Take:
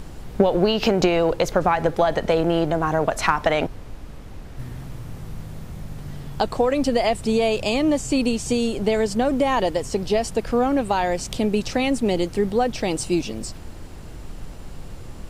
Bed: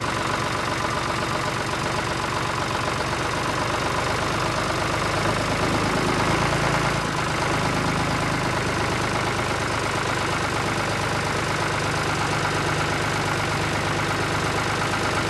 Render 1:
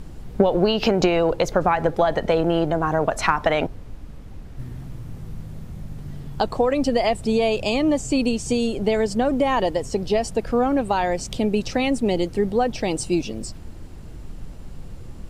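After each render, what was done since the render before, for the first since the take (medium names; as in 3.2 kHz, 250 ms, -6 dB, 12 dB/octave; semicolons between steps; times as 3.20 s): noise reduction 6 dB, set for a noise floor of -37 dBFS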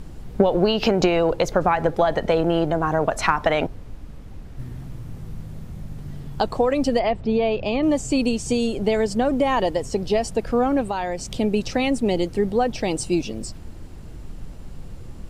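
6.99–7.83 s: distance through air 260 m; 10.87–11.34 s: compression 1.5:1, threshold -29 dBFS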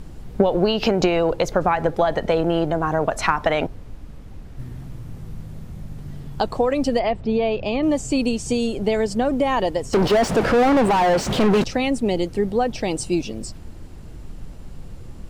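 9.93–11.64 s: overdrive pedal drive 37 dB, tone 1.2 kHz, clips at -9 dBFS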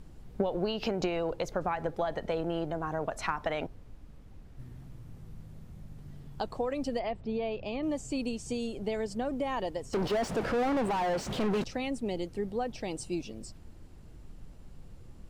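trim -12.5 dB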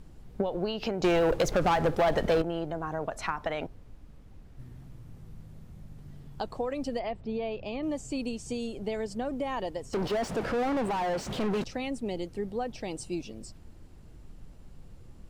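1.04–2.42 s: waveshaping leveller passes 3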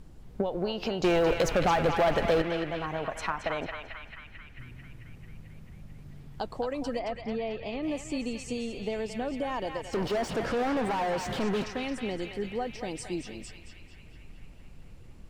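band-passed feedback delay 221 ms, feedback 75%, band-pass 2.2 kHz, level -3.5 dB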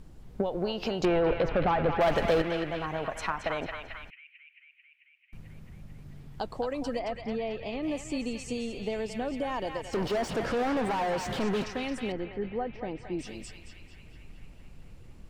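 1.05–2.01 s: distance through air 350 m; 4.10–5.33 s: Butterworth band-pass 2.5 kHz, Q 3.6; 12.12–13.19 s: low-pass 1.9 kHz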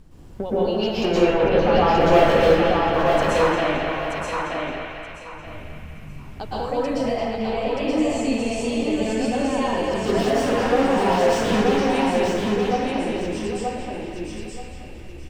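on a send: feedback delay 928 ms, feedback 24%, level -3.5 dB; on the sum: plate-style reverb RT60 0.83 s, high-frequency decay 0.8×, pre-delay 105 ms, DRR -8 dB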